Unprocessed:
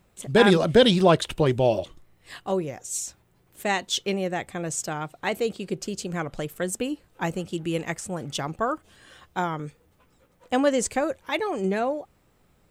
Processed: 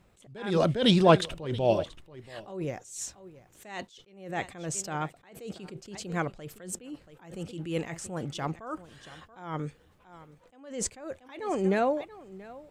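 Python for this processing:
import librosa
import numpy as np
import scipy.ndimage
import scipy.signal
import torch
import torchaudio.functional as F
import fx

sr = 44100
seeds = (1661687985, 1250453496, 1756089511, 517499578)

p1 = fx.high_shelf(x, sr, hz=9800.0, db=-9.5)
p2 = p1 + fx.echo_single(p1, sr, ms=681, db=-20.0, dry=0)
y = fx.attack_slew(p2, sr, db_per_s=100.0)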